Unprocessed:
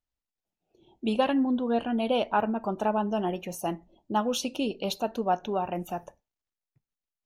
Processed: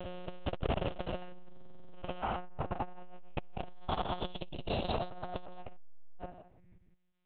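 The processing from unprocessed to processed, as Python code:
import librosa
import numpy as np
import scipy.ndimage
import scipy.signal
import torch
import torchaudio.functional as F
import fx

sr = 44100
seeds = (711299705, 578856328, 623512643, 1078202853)

p1 = fx.spec_swells(x, sr, rise_s=2.36)
p2 = np.clip(p1, -10.0 ** (-22.0 / 20.0), 10.0 ** (-22.0 / 20.0))
p3 = p1 + (p2 * 10.0 ** (-10.0 / 20.0))
p4 = fx.over_compress(p3, sr, threshold_db=-29.0, ratio=-1.0)
p5 = fx.echo_feedback(p4, sr, ms=166, feedback_pct=23, wet_db=-5.5)
p6 = fx.lpc_monotone(p5, sr, seeds[0], pitch_hz=180.0, order=8)
p7 = fx.env_lowpass_down(p6, sr, base_hz=1000.0, full_db=-14.0)
p8 = fx.buffer_glitch(p7, sr, at_s=(1.52, 5.76), block=2048, repeats=8)
p9 = fx.transformer_sat(p8, sr, knee_hz=210.0)
y = p9 * 10.0 ** (-2.5 / 20.0)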